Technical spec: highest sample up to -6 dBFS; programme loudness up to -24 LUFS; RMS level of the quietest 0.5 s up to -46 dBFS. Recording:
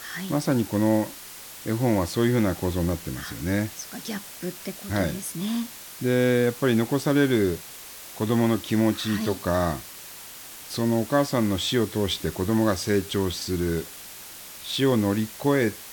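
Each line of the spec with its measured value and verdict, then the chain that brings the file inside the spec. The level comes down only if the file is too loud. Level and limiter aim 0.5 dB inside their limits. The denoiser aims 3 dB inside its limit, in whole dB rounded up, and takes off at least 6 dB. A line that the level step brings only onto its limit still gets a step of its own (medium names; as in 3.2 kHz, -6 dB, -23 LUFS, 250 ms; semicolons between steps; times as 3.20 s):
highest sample -9.0 dBFS: pass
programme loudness -25.0 LUFS: pass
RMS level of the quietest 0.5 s -42 dBFS: fail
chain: noise reduction 7 dB, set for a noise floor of -42 dBFS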